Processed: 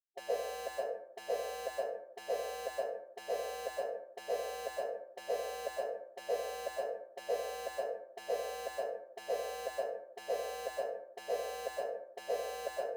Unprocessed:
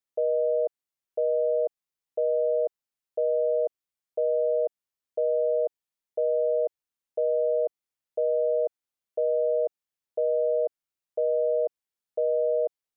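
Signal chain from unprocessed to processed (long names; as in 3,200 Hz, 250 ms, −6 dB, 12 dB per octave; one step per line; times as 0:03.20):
flat-topped band-pass 620 Hz, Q 1.8
reversed playback
upward compression, threshold −46 dBFS
reversed playback
dead-zone distortion −51 dBFS
dense smooth reverb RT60 0.73 s, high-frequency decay 0.45×, pre-delay 110 ms, DRR −6 dB
gate on every frequency bin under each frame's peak −15 dB weak
level +6 dB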